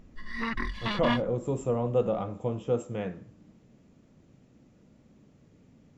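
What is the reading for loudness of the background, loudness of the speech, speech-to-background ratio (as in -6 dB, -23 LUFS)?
-32.5 LUFS, -30.5 LUFS, 2.0 dB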